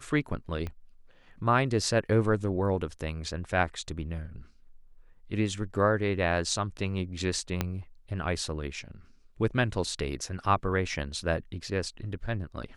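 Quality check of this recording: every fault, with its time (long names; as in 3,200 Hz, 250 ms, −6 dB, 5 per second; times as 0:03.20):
0:00.67: click −23 dBFS
0:07.61: click −12 dBFS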